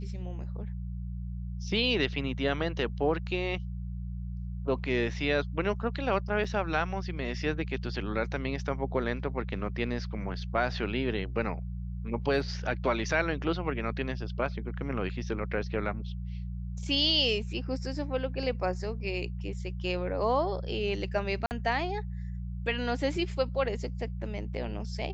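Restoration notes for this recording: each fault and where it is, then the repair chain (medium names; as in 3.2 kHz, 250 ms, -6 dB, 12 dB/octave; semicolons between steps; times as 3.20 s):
hum 60 Hz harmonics 3 -36 dBFS
6.44 s: dropout 4.7 ms
21.46–21.51 s: dropout 49 ms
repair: de-hum 60 Hz, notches 3; interpolate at 6.44 s, 4.7 ms; interpolate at 21.46 s, 49 ms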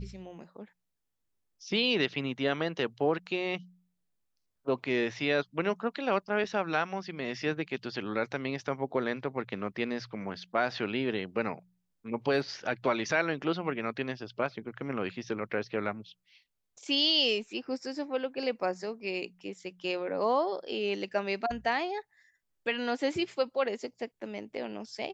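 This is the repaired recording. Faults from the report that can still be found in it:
nothing left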